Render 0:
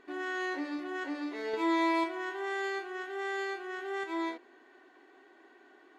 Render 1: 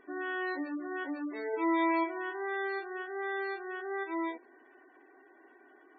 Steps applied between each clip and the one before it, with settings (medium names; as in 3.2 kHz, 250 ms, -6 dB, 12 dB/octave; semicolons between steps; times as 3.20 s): spectral gate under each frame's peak -20 dB strong; band-stop 3.1 kHz, Q 18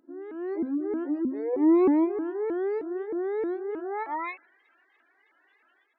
level rider gain up to 11 dB; band-pass sweep 340 Hz -> 3.7 kHz, 3.71–4.58 s; vibrato with a chosen wave saw up 3.2 Hz, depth 250 cents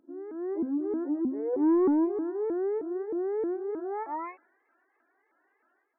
saturation -18.5 dBFS, distortion -16 dB; Gaussian low-pass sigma 5.5 samples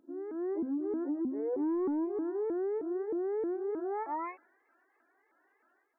compression 5:1, threshold -31 dBFS, peak gain reduction 9 dB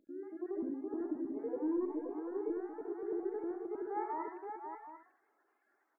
random holes in the spectrogram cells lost 36%; feedback comb 830 Hz, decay 0.32 s, mix 70%; multi-tap echo 70/104/233/528/743/807 ms -6/-11.5/-15.5/-6/-11.5/-19 dB; trim +5.5 dB